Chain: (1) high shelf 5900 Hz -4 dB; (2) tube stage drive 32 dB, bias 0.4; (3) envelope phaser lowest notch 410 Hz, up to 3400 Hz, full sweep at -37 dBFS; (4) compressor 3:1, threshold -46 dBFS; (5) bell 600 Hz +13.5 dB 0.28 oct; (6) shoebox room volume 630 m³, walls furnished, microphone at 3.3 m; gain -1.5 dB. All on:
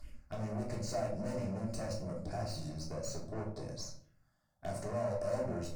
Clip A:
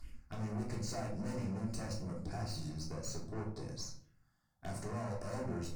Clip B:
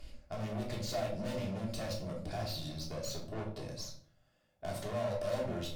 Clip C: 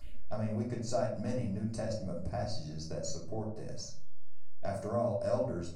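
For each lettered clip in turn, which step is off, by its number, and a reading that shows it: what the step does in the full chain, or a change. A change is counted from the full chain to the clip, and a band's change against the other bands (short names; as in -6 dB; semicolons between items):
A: 5, 500 Hz band -7.0 dB; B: 3, 4 kHz band +6.0 dB; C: 2, 2 kHz band -2.0 dB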